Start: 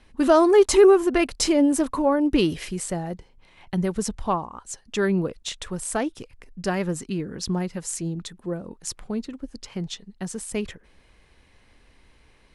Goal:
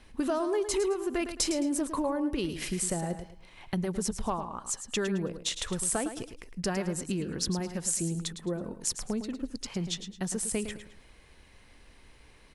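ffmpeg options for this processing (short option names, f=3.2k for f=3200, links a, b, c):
-filter_complex "[0:a]acompressor=threshold=-28dB:ratio=6,highshelf=f=7.1k:g=5.5,asplit=2[a][b];[b]aecho=0:1:108|216|324:0.316|0.0949|0.0285[c];[a][c]amix=inputs=2:normalize=0"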